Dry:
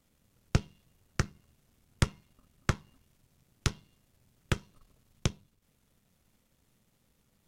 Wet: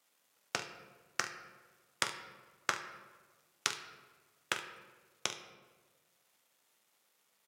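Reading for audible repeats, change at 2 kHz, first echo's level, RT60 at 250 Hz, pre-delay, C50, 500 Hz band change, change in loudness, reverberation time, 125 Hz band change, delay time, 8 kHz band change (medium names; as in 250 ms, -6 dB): 1, +2.0 dB, -11.0 dB, 1.7 s, 3 ms, 9.0 dB, -5.5 dB, -4.0 dB, 1.4 s, -27.0 dB, 45 ms, +1.5 dB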